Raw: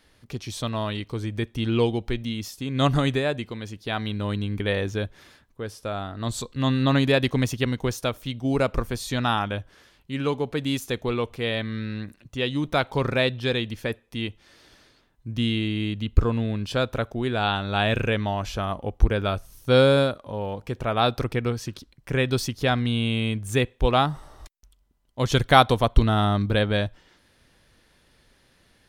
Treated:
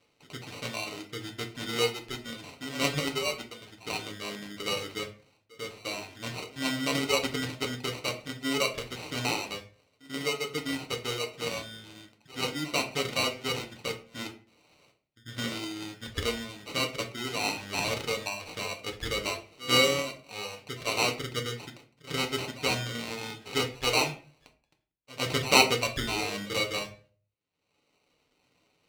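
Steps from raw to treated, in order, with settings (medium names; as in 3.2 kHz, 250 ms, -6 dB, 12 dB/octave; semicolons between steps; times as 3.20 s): reverse echo 100 ms -17 dB; gate with hold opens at -45 dBFS; reverb removal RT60 1.3 s; upward compressor, threshold -45 dBFS; sample-and-hold 26×; frequency weighting D; reverberation RT60 0.40 s, pre-delay 7 ms, DRR 3 dB; trim -9 dB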